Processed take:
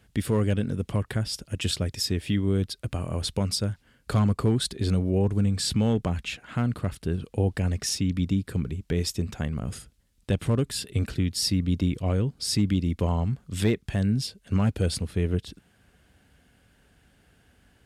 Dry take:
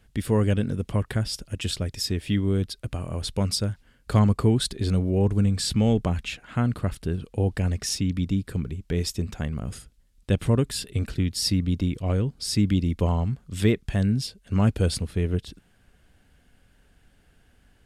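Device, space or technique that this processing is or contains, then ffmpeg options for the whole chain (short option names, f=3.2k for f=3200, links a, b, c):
clipper into limiter: -af "asoftclip=type=hard:threshold=-13dB,alimiter=limit=-16.5dB:level=0:latency=1:release=466,highpass=59,volume=1.5dB"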